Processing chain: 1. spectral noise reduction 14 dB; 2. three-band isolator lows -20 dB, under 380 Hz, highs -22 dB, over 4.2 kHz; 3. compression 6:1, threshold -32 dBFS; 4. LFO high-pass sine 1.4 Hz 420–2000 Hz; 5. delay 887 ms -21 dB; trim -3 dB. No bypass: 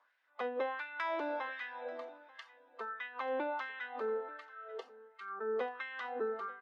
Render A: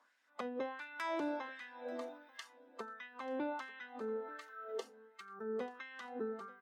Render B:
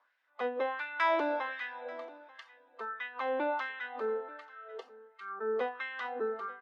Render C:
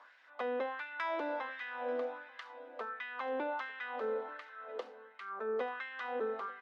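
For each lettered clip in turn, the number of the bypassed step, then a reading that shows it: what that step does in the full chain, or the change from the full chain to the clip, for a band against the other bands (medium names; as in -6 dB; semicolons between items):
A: 2, 250 Hz band +9.5 dB; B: 3, mean gain reduction 2.5 dB; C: 1, momentary loudness spread change -2 LU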